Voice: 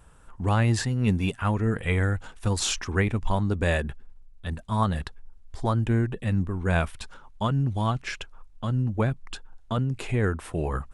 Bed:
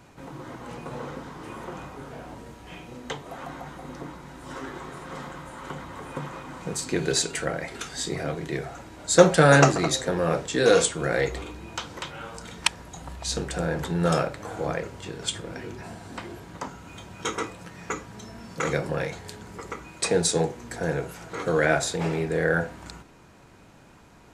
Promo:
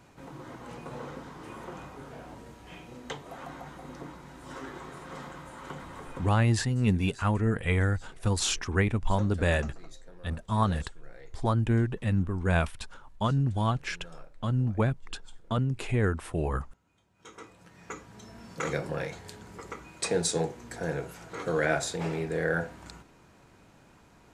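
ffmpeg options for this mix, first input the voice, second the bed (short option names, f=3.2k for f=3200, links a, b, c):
-filter_complex "[0:a]adelay=5800,volume=-1.5dB[a];[1:a]volume=18dB,afade=t=out:st=5.99:d=0.55:silence=0.0707946,afade=t=in:st=17.14:d=1.35:silence=0.0749894[b];[a][b]amix=inputs=2:normalize=0"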